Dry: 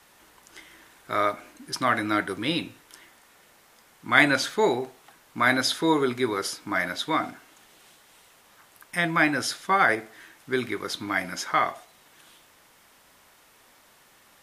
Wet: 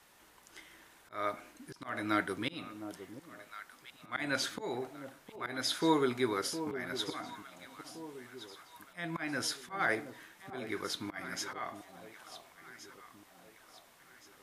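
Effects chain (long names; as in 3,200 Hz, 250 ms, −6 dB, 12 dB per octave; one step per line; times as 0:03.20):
volume swells 274 ms
delay that swaps between a low-pass and a high-pass 710 ms, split 940 Hz, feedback 63%, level −10 dB
level −6 dB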